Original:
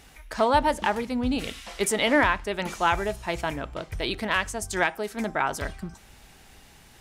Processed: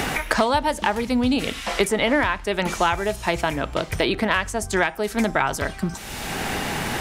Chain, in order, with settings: three bands compressed up and down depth 100%; trim +3.5 dB

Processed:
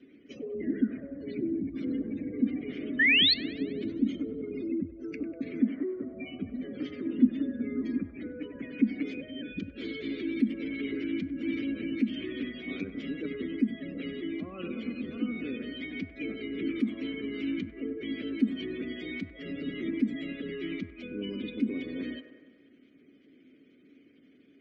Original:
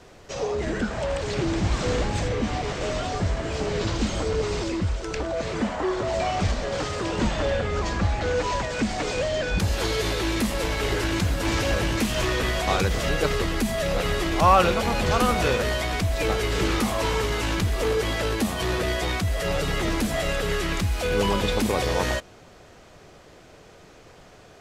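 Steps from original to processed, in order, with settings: spectral gate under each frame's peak -20 dB strong; 7.05–7.97 s: peaking EQ 250 Hz +11 dB 0.32 oct; gain riding within 3 dB 0.5 s; vowel filter i; small resonant body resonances 240/370 Hz, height 6 dB, ringing for 20 ms; 2.99–3.34 s: painted sound rise 1.7–4.5 kHz -22 dBFS; feedback echo behind a band-pass 97 ms, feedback 62%, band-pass 910 Hz, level -8.5 dB; on a send at -20.5 dB: reverberation RT60 0.45 s, pre-delay 4 ms

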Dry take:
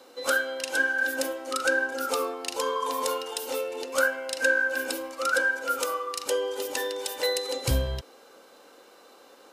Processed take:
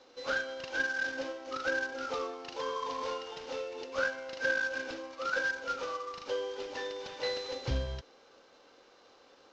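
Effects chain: CVSD coder 32 kbps; trim -7 dB

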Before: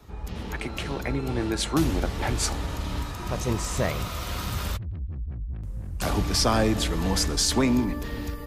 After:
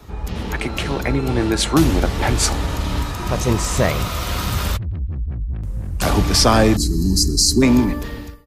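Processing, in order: fade out at the end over 0.62 s; time-frequency box 6.76–7.62 s, 420–3900 Hz -27 dB; trim +8.5 dB

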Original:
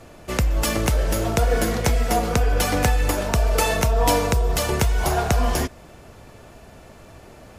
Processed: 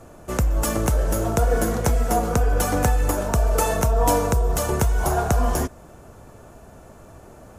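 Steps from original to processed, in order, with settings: high-order bell 3.1 kHz -8.5 dB

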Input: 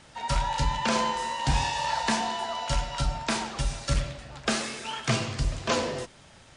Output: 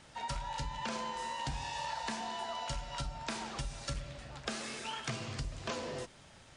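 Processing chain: compression, threshold -31 dBFS, peak gain reduction 11.5 dB; trim -4.5 dB

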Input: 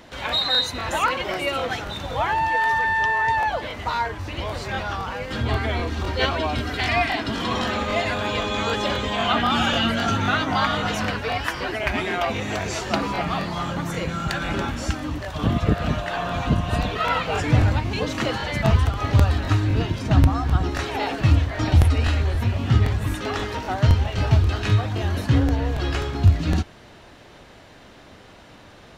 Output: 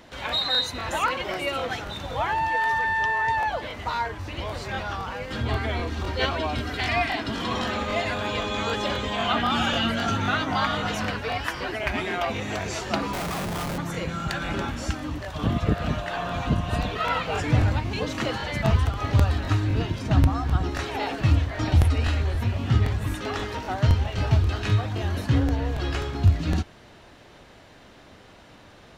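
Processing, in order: 13.13–13.78 s: Schmitt trigger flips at -31.5 dBFS; trim -3 dB

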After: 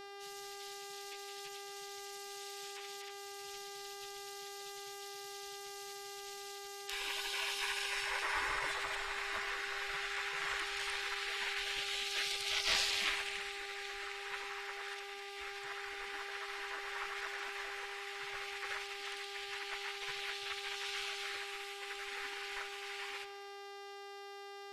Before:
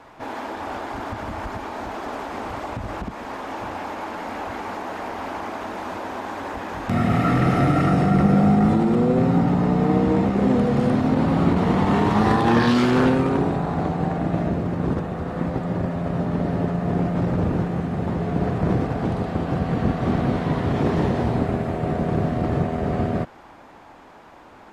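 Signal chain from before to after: 2.28–3.58 s: comb 6.7 ms, depth 43%; spectral gate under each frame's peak -30 dB weak; mains buzz 400 Hz, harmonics 14, -52 dBFS -5 dB/octave; simulated room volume 3100 m³, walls mixed, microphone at 0.68 m; trim +2.5 dB

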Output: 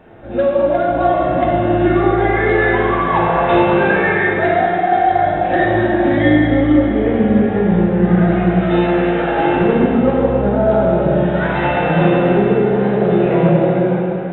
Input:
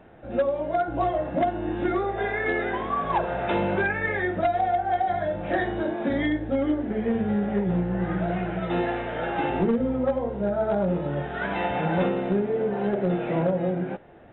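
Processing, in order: plate-style reverb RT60 3.2 s, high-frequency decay 0.85×, DRR -4.5 dB; trim +5 dB

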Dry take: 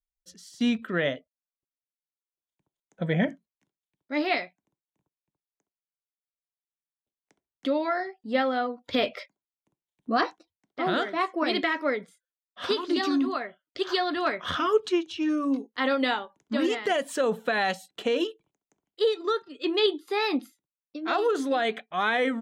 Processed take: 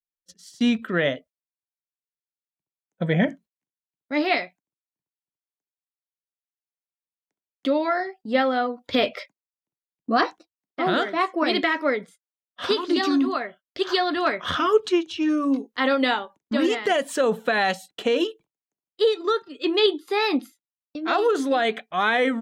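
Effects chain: gate -49 dBFS, range -23 dB; trim +4 dB

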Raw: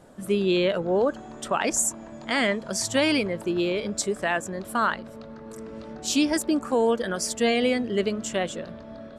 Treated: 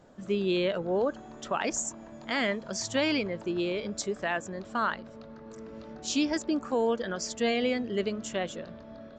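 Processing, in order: resampled via 16 kHz; trim -5 dB

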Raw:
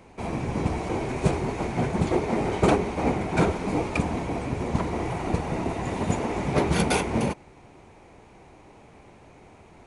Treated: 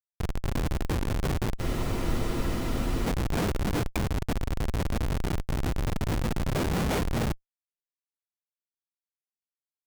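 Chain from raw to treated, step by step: in parallel at -2 dB: compression 8:1, threshold -37 dBFS, peak gain reduction 20.5 dB; on the sum: delay 926 ms -17 dB; Schmitt trigger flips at -21 dBFS; spectral freeze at 1.62 s, 1.44 s

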